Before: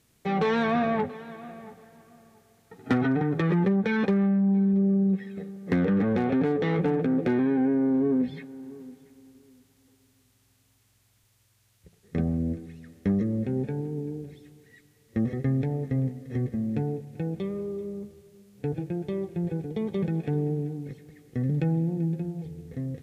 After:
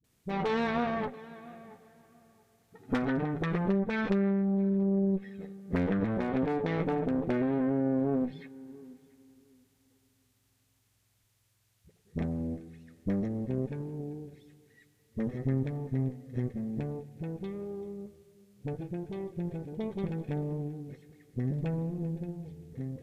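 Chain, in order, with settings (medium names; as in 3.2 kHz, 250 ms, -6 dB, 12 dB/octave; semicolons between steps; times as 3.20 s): phase dispersion highs, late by 42 ms, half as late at 300 Hz; Chebyshev shaper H 4 -13 dB, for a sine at -11 dBFS; trim -6 dB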